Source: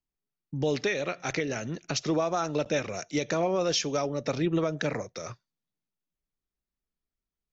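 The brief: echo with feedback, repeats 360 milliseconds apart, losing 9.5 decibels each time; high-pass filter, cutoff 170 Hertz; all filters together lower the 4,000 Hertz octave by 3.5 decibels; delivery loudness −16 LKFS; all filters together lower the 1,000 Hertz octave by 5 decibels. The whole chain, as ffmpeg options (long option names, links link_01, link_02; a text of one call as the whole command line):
ffmpeg -i in.wav -af "highpass=170,equalizer=frequency=1000:width_type=o:gain=-7.5,equalizer=frequency=4000:width_type=o:gain=-4.5,aecho=1:1:360|720|1080|1440:0.335|0.111|0.0365|0.012,volume=15dB" out.wav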